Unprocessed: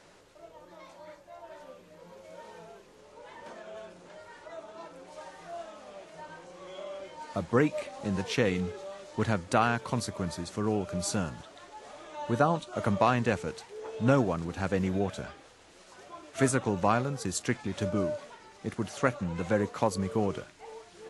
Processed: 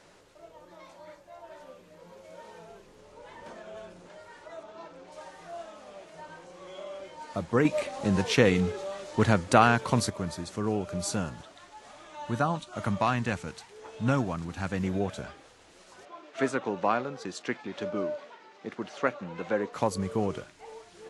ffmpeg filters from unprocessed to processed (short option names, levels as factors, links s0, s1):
-filter_complex "[0:a]asettb=1/sr,asplit=3[s0][s1][s2];[s0]atrim=end=2.694[s3];[s1]atrim=start=2.69:end=4.07,asetpts=PTS-STARTPTS,afade=t=in:d=0.004:c=qsin,afade=t=out:st=1.376:d=0.004:c=qsin,lowshelf=f=150:g=7.5[s4];[s2]atrim=start=4.066[s5];[s3][s4]acrossfade=d=0.004:c1=hsin:c2=qsin[s6];[s6][s5]acrossfade=d=0.004:c1=qsin:c2=hsin,asettb=1/sr,asplit=3[s7][s8][s9];[s7]atrim=end=4.634[s10];[s8]atrim=start=4.63:end=5.12,asetpts=PTS-STARTPTS,afade=t=in:d=0.004:c=qsin,afade=t=out:st=0.486:d=0.004:c=qsin,lowpass=6200[s11];[s9]atrim=start=5.116[s12];[s10][s11]acrossfade=d=0.004:c1=hsin:c2=qsin[s13];[s13][s12]acrossfade=d=0.004:c1=qsin:c2=hsin,asettb=1/sr,asplit=3[s14][s15][s16];[s14]atrim=end=11.524[s17];[s15]atrim=start=11.52:end=14.84,asetpts=PTS-STARTPTS,afade=t=in:d=0.004:c=qsin,afade=t=out:st=3.316:d=0.004:c=qsin,equalizer=f=460:w=1.5:g=-7.5[s18];[s16]atrim=start=14.836[s19];[s17][s18]acrossfade=d=0.004:c1=hsin:c2=qsin[s20];[s20][s19]acrossfade=d=0.004:c1=qsin:c2=hsin,asettb=1/sr,asplit=3[s21][s22][s23];[s21]atrim=end=16.054[s24];[s22]atrim=start=16.05:end=19.73,asetpts=PTS-STARTPTS,afade=t=in:d=0.004:c=qsin,afade=t=out:st=3.676:d=0.004:c=qsin,highpass=260,lowpass=4200[s25];[s23]atrim=start=19.726[s26];[s24][s25]acrossfade=d=0.004:c1=hsin:c2=qsin[s27];[s27][s26]acrossfade=d=0.004:c1=qsin:c2=hsin,asplit=3[s28][s29][s30];[s28]atrim=end=7.652[s31];[s29]atrim=start=7.648:end=10.102,asetpts=PTS-STARTPTS,volume=1.88[s32];[s30]atrim=start=10.098[s33];[s31][s32]acrossfade=d=0.004:c1=hsin:c2=hsin[s34];[s34][s33]acrossfade=d=0.004:c1=hsin:c2=hsin"